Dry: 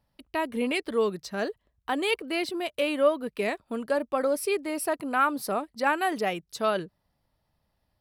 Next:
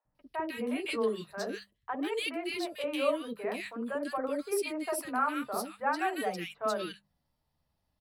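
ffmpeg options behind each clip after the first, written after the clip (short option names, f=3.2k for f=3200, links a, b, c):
-filter_complex "[0:a]bandreject=f=50:t=h:w=6,bandreject=f=100:t=h:w=6,bandreject=f=150:t=h:w=6,bandreject=f=200:t=h:w=6,flanger=delay=6.4:depth=6.9:regen=-32:speed=0.47:shape=sinusoidal,acrossover=split=530|1800[a][b][c];[a]adelay=50[d];[c]adelay=150[e];[d][b][e]amix=inputs=3:normalize=0"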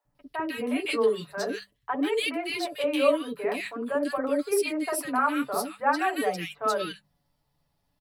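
-af "aecho=1:1:7:0.52,volume=4.5dB"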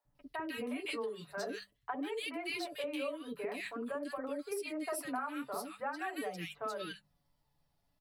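-af "acompressor=threshold=-31dB:ratio=6,flanger=delay=0.2:depth=1.4:regen=82:speed=0.31:shape=triangular"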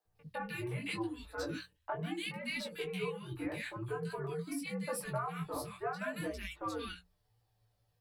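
-af "flanger=delay=16:depth=5:speed=0.78,bandreject=f=60:t=h:w=6,bandreject=f=120:t=h:w=6,bandreject=f=180:t=h:w=6,bandreject=f=240:t=h:w=6,bandreject=f=300:t=h:w=6,afreqshift=-120,volume=3.5dB"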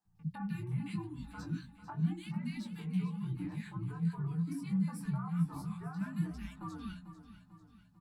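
-af "acompressor=threshold=-46dB:ratio=2,firequalizer=gain_entry='entry(100,0);entry(170,12);entry(520,-27);entry(820,-4);entry(2300,-13);entry(4900,-9);entry(6900,-6);entry(11000,-11)':delay=0.05:min_phase=1,aecho=1:1:445|890|1335|1780|2225:0.224|0.112|0.056|0.028|0.014,volume=5dB"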